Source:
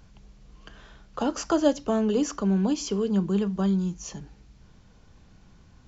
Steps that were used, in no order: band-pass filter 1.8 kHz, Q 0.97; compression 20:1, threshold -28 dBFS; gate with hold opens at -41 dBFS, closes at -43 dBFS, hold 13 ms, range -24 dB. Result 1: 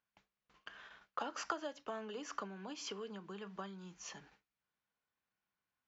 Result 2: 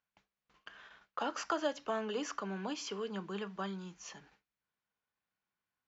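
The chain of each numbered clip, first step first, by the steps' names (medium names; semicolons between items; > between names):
compression > gate with hold > band-pass filter; gate with hold > band-pass filter > compression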